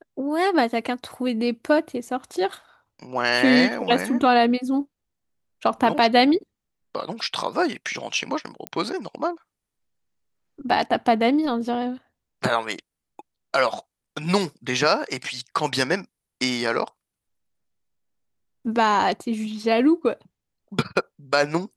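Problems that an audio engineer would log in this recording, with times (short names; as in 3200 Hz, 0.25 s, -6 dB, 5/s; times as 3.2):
8.67 pop -13 dBFS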